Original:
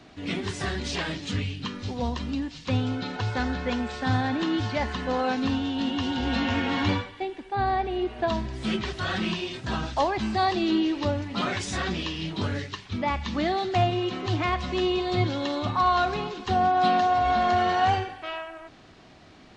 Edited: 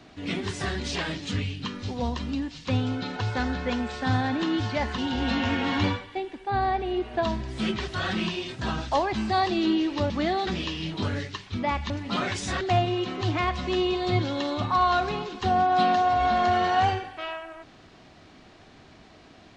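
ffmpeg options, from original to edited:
-filter_complex "[0:a]asplit=6[s0][s1][s2][s3][s4][s5];[s0]atrim=end=4.982[s6];[s1]atrim=start=6.028:end=11.152[s7];[s2]atrim=start=13.288:end=13.662[s8];[s3]atrim=start=11.858:end=13.292[s9];[s4]atrim=start=11.148:end=11.862[s10];[s5]atrim=start=13.658[s11];[s6][s7]acrossfade=d=0.004:c1=hsin:c2=hsin[s12];[s12][s8]acrossfade=d=0.004:c1=hsin:c2=hsin[s13];[s13][s9]acrossfade=d=0.004:c1=hsin:c2=hsin[s14];[s14][s10]acrossfade=d=0.004:c1=hsin:c2=hsin[s15];[s15][s11]acrossfade=d=0.004:c1=hsin:c2=hsin"

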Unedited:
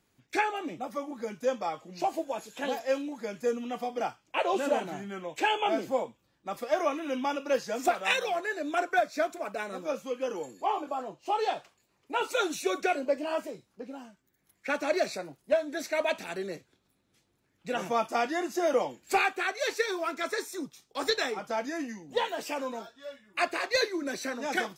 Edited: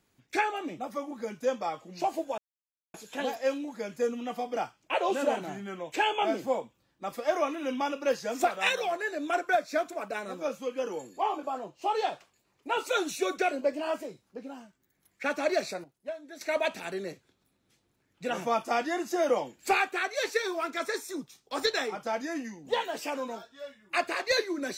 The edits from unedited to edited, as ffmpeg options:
-filter_complex "[0:a]asplit=4[s0][s1][s2][s3];[s0]atrim=end=2.38,asetpts=PTS-STARTPTS,afade=t=out:st=2.376:d=0.004:c=hsin,apad=pad_dur=0.56[s4];[s1]atrim=start=2.38:end=15.282,asetpts=PTS-STARTPTS,afade=t=in:d=0.004:c=hsin[s5];[s2]atrim=start=15.278:end=15.852,asetpts=PTS-STARTPTS,volume=0.266[s6];[s3]atrim=start=15.848[s7];[s4][s5]concat=n=2:v=0:a=1[s8];[s8][s6]acrossfade=d=0.004:c1=hsin:c2=hsin[s9];[s9][s7]acrossfade=d=0.004:c1=hsin:c2=hsin"

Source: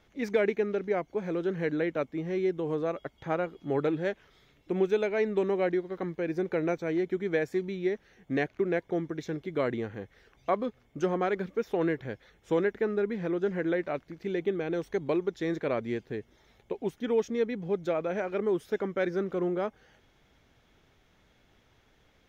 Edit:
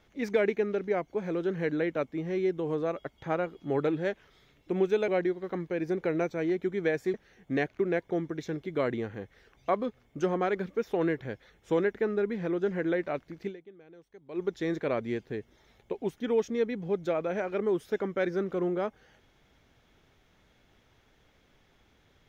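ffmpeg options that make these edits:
-filter_complex "[0:a]asplit=5[s0][s1][s2][s3][s4];[s0]atrim=end=5.082[s5];[s1]atrim=start=5.558:end=7.622[s6];[s2]atrim=start=7.938:end=14.69,asetpts=PTS-STARTPTS,afade=t=out:st=6.332:d=0.42:c=exp:silence=0.0794328[s7];[s3]atrim=start=14.69:end=14.78,asetpts=PTS-STARTPTS,volume=0.0794[s8];[s4]atrim=start=14.78,asetpts=PTS-STARTPTS,afade=t=in:d=0.42:c=exp:silence=0.0794328[s9];[s5][s6]acrossfade=d=0.004:c1=hsin:c2=hsin[s10];[s7][s8][s9]concat=n=3:v=0:a=1[s11];[s10][s11]acrossfade=d=0.004:c1=hsin:c2=hsin"

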